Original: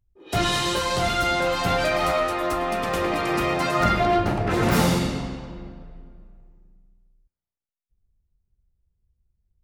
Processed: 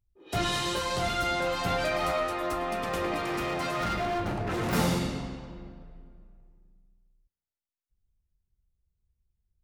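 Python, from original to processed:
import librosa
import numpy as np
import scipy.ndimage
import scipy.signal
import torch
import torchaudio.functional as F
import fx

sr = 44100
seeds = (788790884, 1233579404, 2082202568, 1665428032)

y = fx.clip_hard(x, sr, threshold_db=-21.0, at=(3.19, 4.73))
y = y * 10.0 ** (-6.0 / 20.0)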